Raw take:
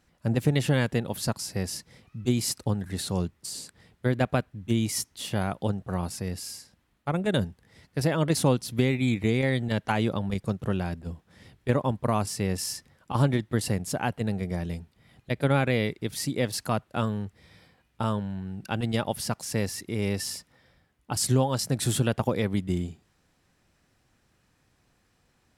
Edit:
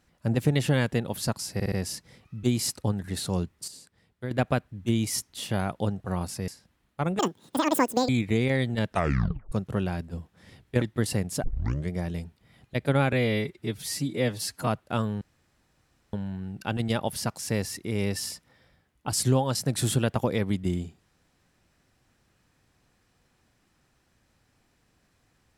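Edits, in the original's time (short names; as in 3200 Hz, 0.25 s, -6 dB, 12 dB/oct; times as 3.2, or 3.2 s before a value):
1.54 stutter 0.06 s, 4 plays
3.5–4.13 gain -9 dB
6.3–6.56 cut
7.27–9.02 speed 195%
9.82 tape stop 0.63 s
11.75–13.37 cut
13.99 tape start 0.46 s
15.68–16.71 stretch 1.5×
17.25–18.17 room tone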